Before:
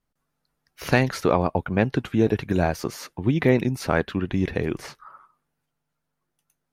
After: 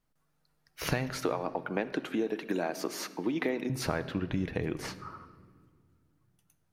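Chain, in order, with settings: 1.23–3.70 s: high-pass 240 Hz 24 dB/octave; compression, threshold -28 dBFS, peak gain reduction 14 dB; simulated room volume 3000 m³, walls mixed, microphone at 0.55 m

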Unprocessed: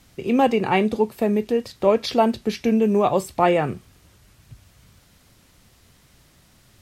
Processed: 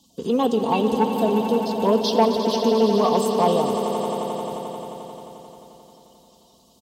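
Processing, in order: coarse spectral quantiser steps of 30 dB; elliptic band-stop 1.1–2.9 kHz; bass shelf 330 Hz -9.5 dB; comb 4.4 ms, depth 53%; in parallel at -2 dB: compression, threshold -33 dBFS, peak gain reduction 18.5 dB; on the sum: waveshaping leveller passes 1; high-pass 60 Hz; on a send: echo with a slow build-up 88 ms, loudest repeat 5, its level -11 dB; on the sum: band noise 3.4–8 kHz -62 dBFS; trim -3 dB

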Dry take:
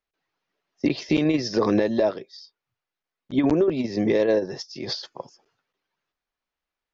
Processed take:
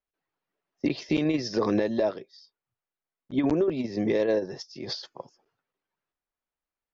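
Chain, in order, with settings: tape noise reduction on one side only decoder only; trim -4 dB

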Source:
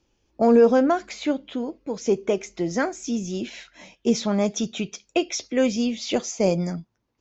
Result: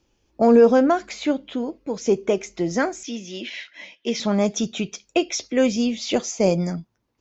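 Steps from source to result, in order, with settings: 3.03–4.20 s: cabinet simulation 340–5600 Hz, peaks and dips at 410 Hz -6 dB, 780 Hz -8 dB, 1.3 kHz -6 dB, 2 kHz +9 dB, 3.1 kHz +6 dB; trim +2 dB

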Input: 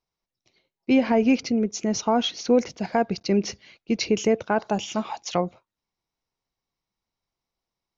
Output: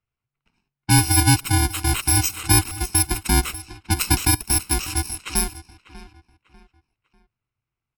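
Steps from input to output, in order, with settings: bit-reversed sample order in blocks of 64 samples; frequency shift -140 Hz; feedback delay 595 ms, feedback 35%, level -16 dB; level-controlled noise filter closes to 2.4 kHz, open at -23.5 dBFS; trim +5 dB

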